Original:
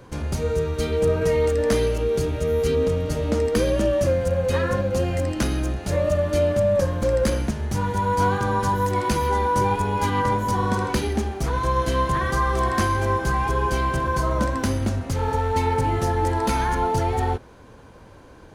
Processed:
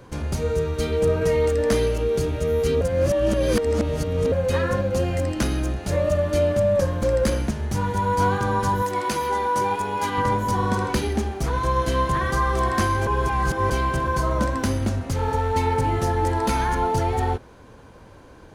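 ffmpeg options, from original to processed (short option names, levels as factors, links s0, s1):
-filter_complex "[0:a]asettb=1/sr,asplit=3[s0][s1][s2];[s0]atrim=end=8.824[s3];[s1]atrim=start=8.82:end=10.18,asetpts=PTS-STARTPTS,afade=t=in:d=0.004:c=qsin,afade=t=out:st=1.356:d=0.004:c=qsin,highpass=f=360:p=1[s4];[s2]atrim=start=10.176[s5];[s3][s4]acrossfade=d=0.004:c1=hsin:c2=qsin[s6];[s6][s5]acrossfade=d=0.004:c1=qsin:c2=hsin,asplit=5[s7][s8][s9][s10][s11];[s7]atrim=end=2.812[s12];[s8]atrim=start=2.808:end=4.322,asetpts=PTS-STARTPTS,areverse[s13];[s9]atrim=start=4.318:end=13.072[s14];[s10]atrim=start=13.068:end=13.702,asetpts=PTS-STARTPTS,areverse[s15];[s11]atrim=start=13.698[s16];[s12][s13]acrossfade=d=0.004:c1=hsin:c2=hsin[s17];[s17][s14]acrossfade=d=0.004:c1=hsin:c2=hsin[s18];[s18][s15]acrossfade=d=0.004:c1=hsin:c2=hsin[s19];[s19][s16]acrossfade=d=0.004:c1=hsin:c2=hsin"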